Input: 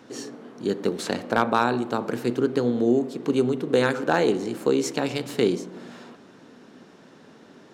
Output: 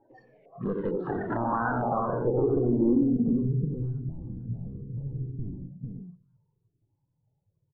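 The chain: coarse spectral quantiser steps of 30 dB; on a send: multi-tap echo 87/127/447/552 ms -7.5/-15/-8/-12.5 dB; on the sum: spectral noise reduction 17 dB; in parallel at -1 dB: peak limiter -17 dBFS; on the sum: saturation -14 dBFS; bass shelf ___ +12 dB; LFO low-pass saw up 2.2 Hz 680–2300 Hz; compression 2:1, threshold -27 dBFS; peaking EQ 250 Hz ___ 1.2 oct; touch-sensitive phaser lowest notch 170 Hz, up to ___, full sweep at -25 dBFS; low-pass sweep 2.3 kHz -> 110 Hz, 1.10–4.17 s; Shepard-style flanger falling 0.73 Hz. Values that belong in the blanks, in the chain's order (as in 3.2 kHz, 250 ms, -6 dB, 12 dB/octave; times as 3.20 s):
84 Hz, +4.5 dB, 2.3 kHz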